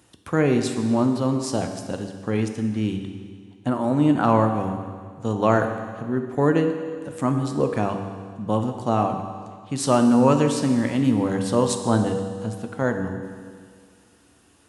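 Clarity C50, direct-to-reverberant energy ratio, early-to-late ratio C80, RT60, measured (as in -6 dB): 6.5 dB, 5.5 dB, 8.0 dB, 1.9 s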